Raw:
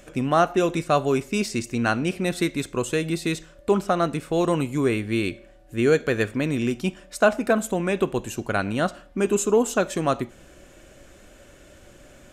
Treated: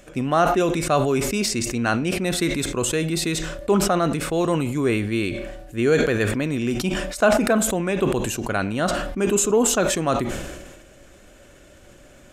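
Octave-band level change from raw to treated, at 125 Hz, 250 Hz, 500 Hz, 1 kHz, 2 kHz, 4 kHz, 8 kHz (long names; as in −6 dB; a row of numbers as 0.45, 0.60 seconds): +2.5, +2.0, +1.5, +1.5, +2.0, +5.5, +8.5 decibels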